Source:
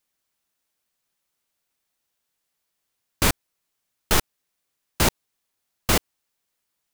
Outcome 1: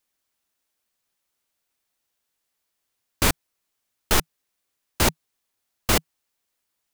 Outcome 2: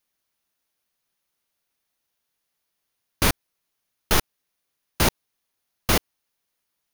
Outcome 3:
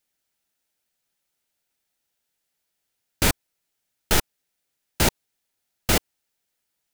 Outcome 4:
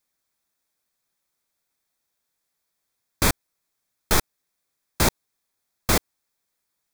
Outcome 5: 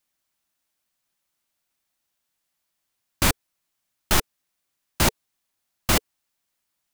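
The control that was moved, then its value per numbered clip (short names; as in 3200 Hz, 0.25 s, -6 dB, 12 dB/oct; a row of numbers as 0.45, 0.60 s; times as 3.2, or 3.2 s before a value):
notch, frequency: 160, 7700, 1100, 2900, 450 Hz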